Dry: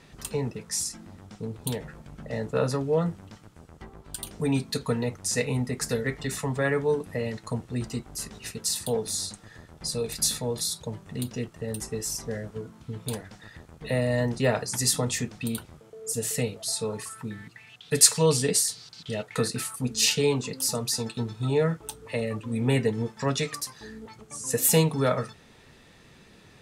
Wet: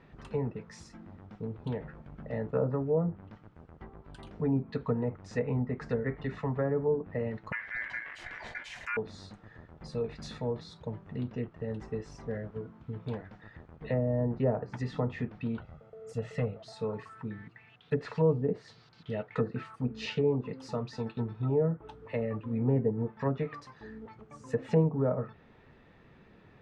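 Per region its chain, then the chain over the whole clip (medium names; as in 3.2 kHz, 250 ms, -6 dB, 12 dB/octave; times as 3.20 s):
7.52–8.97 s: hum notches 50/100/150/200/250/300/350 Hz + ring modulator 1.9 kHz + level flattener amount 50%
15.60–16.58 s: comb 1.5 ms, depth 59% + hard clipper -21 dBFS
whole clip: low-pass 1.9 kHz 12 dB/octave; low-pass that closes with the level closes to 720 Hz, closed at -21 dBFS; trim -3 dB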